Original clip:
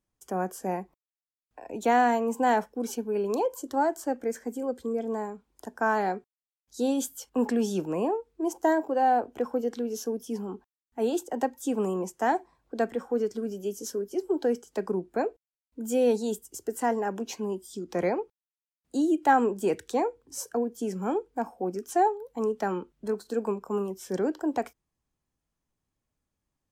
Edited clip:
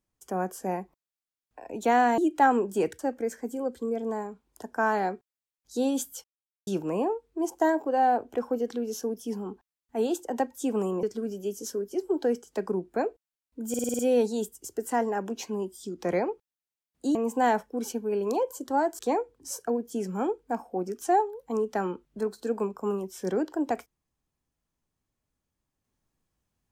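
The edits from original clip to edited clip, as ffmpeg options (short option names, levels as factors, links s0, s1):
-filter_complex "[0:a]asplit=14[s0][s1][s2][s3][s4][s5][s6][s7][s8][s9][s10][s11][s12][s13];[s0]atrim=end=2.182[s14];[s1]atrim=start=19.048:end=19.862[s15];[s2]atrim=start=4.018:end=7.27,asetpts=PTS-STARTPTS,afade=t=out:st=3.248:d=0.004:c=hsin[s16];[s3]atrim=start=7.27:end=7.7,asetpts=PTS-STARTPTS,volume=0[s17];[s4]atrim=start=7.7:end=12.062,asetpts=PTS-STARTPTS,afade=t=in:d=0.004:c=hsin[s18];[s5]atrim=start=13.228:end=15.942[s19];[s6]atrim=start=15.888:end=15.942[s20];[s7]atrim=start=15.888:end=15.942[s21];[s8]atrim=start=15.888:end=15.942[s22];[s9]atrim=start=15.888:end=15.942[s23];[s10]atrim=start=15.888:end=15.942[s24];[s11]atrim=start=15.888:end=19.052[s25];[s12]atrim=start=2.178:end=4.022[s26];[s13]atrim=start=19.858[s27];[s14][s15]acrossfade=d=0.004:c1=hsin:c2=hsin[s28];[s16][s17][s18]concat=n=3:v=0:a=1[s29];[s28][s29]acrossfade=d=0.004:c1=hsin:c2=hsin[s30];[s30][s19]acrossfade=d=0.004:c1=hsin:c2=hsin[s31];[s31][s20]acrossfade=d=0.004:c1=hsin:c2=hsin[s32];[s32][s21]acrossfade=d=0.004:c1=hsin:c2=hsin[s33];[s33][s22]acrossfade=d=0.004:c1=hsin:c2=hsin[s34];[s34][s23]acrossfade=d=0.004:c1=hsin:c2=hsin[s35];[s35][s24]acrossfade=d=0.004:c1=hsin:c2=hsin[s36];[s36][s25]acrossfade=d=0.004:c1=hsin:c2=hsin[s37];[s37][s26]acrossfade=d=0.004:c1=hsin:c2=hsin[s38];[s38][s27]acrossfade=d=0.004:c1=hsin:c2=hsin"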